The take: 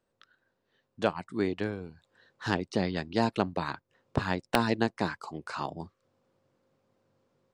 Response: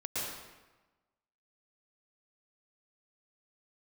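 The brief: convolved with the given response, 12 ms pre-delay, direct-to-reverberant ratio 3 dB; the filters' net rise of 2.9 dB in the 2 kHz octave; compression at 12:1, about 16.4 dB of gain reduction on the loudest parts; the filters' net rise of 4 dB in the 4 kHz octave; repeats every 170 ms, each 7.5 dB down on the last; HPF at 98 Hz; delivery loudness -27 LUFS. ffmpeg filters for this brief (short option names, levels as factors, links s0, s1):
-filter_complex "[0:a]highpass=98,equalizer=f=2000:t=o:g=3,equalizer=f=4000:t=o:g=4,acompressor=threshold=0.0141:ratio=12,aecho=1:1:170|340|510|680|850:0.422|0.177|0.0744|0.0312|0.0131,asplit=2[s0][s1];[1:a]atrim=start_sample=2205,adelay=12[s2];[s1][s2]afir=irnorm=-1:irlink=0,volume=0.422[s3];[s0][s3]amix=inputs=2:normalize=0,volume=5.31"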